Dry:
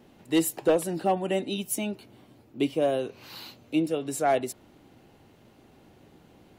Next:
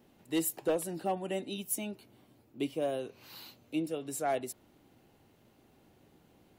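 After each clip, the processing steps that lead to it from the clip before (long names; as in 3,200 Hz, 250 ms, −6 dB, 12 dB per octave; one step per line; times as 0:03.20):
high-shelf EQ 10,000 Hz +9 dB
level −8 dB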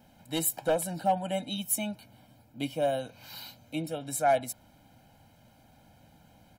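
comb filter 1.3 ms, depth 91%
level +3 dB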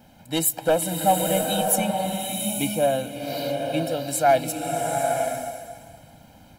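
slow-attack reverb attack 870 ms, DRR 2 dB
level +6.5 dB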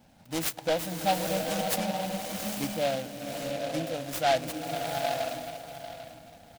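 repeating echo 795 ms, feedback 29%, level −13 dB
short delay modulated by noise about 2,600 Hz, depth 0.069 ms
level −7 dB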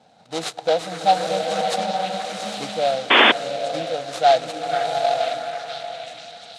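loudspeaker in its box 150–8,700 Hz, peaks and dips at 270 Hz −6 dB, 460 Hz +9 dB, 730 Hz +10 dB, 1,300 Hz +6 dB, 3,900 Hz +9 dB
echo through a band-pass that steps 484 ms, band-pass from 1,600 Hz, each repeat 0.7 octaves, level −2.5 dB
sound drawn into the spectrogram noise, 0:03.10–0:03.32, 210–3,600 Hz −14 dBFS
level +1.5 dB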